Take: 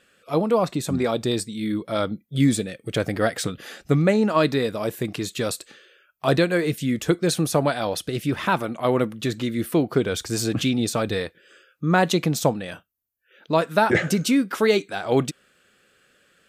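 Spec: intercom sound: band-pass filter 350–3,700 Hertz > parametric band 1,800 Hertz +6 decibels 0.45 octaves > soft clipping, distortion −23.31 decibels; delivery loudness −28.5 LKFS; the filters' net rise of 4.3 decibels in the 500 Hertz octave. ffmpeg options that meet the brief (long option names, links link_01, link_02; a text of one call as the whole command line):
ffmpeg -i in.wav -af "highpass=350,lowpass=3700,equalizer=frequency=500:width_type=o:gain=6.5,equalizer=frequency=1800:width_type=o:width=0.45:gain=6,asoftclip=threshold=-5dB,volume=-6dB" out.wav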